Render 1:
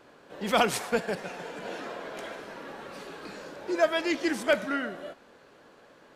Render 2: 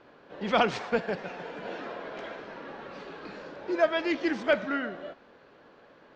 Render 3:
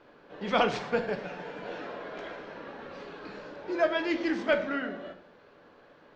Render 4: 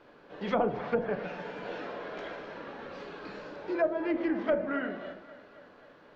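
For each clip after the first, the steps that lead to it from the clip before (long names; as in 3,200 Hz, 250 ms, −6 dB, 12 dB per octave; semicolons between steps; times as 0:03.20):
Bessel low-pass filter 3,600 Hz, order 8
rectangular room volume 70 cubic metres, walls mixed, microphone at 0.37 metres; level −2 dB
treble cut that deepens with the level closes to 730 Hz, closed at −23 dBFS; feedback echo with a high-pass in the loop 267 ms, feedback 59%, high-pass 210 Hz, level −15.5 dB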